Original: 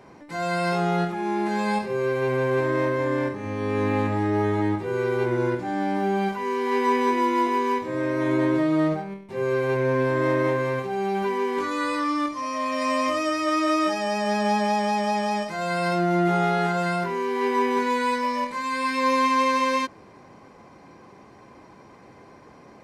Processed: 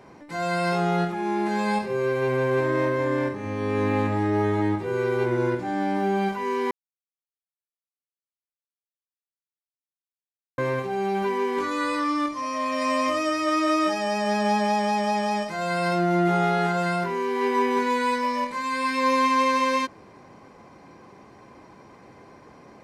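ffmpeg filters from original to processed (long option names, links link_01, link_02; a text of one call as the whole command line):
ffmpeg -i in.wav -filter_complex "[0:a]asplit=3[link_01][link_02][link_03];[link_01]atrim=end=6.71,asetpts=PTS-STARTPTS,afade=type=out:start_time=6.706:duration=0.004:curve=hsin[link_04];[link_02]atrim=start=6.71:end=10.58,asetpts=PTS-STARTPTS,volume=0[link_05];[link_03]atrim=start=10.58,asetpts=PTS-STARTPTS,afade=type=in:duration=0.004:curve=hsin[link_06];[link_04][link_05][link_06]concat=n=3:v=0:a=1" out.wav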